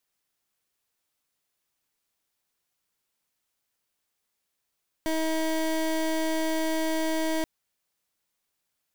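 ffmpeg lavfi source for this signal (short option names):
-f lavfi -i "aevalsrc='0.0473*(2*lt(mod(319*t,1),0.24)-1)':d=2.38:s=44100"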